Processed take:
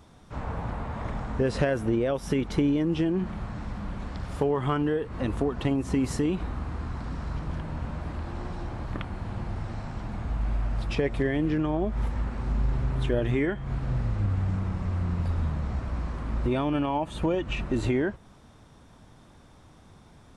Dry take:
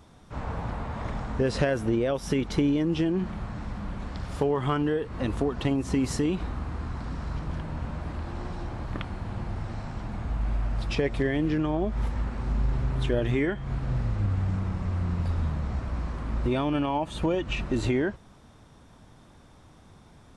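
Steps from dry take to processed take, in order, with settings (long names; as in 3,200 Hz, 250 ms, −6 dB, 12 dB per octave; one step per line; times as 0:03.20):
dynamic equaliser 5,000 Hz, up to −4 dB, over −52 dBFS, Q 0.86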